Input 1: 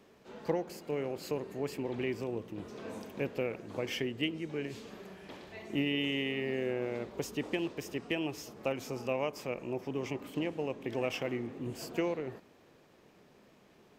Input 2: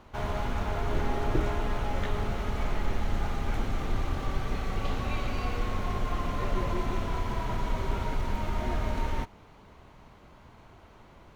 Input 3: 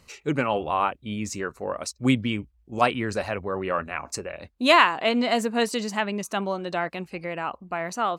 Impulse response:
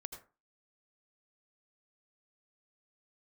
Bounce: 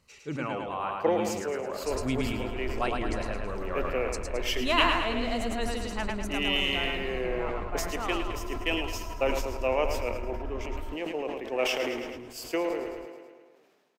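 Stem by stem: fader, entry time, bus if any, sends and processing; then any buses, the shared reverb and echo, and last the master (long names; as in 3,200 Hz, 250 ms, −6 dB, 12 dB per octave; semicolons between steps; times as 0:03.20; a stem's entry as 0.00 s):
+3.0 dB, 0.55 s, no send, echo send −10 dB, high-pass filter 380 Hz 12 dB per octave; multiband upward and downward expander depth 100%
−12.0 dB, 1.70 s, no send, no echo send, low-pass filter 1,700 Hz; comb filter 3 ms, depth 91%
−10.5 dB, 0.00 s, no send, echo send −3.5 dB, no processing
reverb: not used
echo: repeating echo 108 ms, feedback 53%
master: level that may fall only so fast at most 36 dB per second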